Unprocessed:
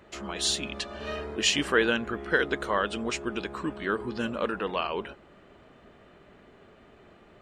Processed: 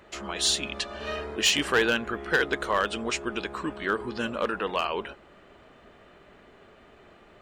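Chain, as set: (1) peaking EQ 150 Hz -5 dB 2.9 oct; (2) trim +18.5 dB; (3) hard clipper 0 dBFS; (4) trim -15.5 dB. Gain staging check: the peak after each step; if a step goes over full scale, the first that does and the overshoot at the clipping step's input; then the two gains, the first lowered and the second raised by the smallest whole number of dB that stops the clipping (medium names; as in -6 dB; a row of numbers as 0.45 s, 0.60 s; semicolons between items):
-9.5 dBFS, +9.0 dBFS, 0.0 dBFS, -15.5 dBFS; step 2, 9.0 dB; step 2 +9.5 dB, step 4 -6.5 dB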